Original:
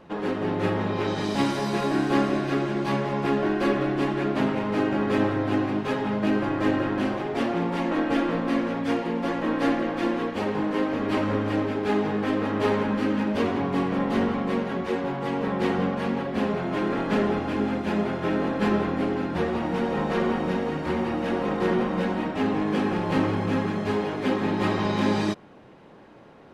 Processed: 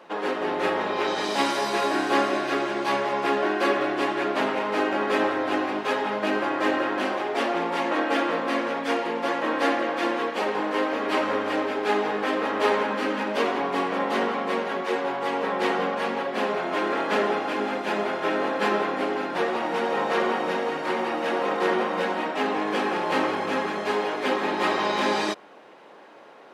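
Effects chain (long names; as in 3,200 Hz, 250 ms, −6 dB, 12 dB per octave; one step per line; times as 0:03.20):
high-pass filter 480 Hz 12 dB per octave
level +5 dB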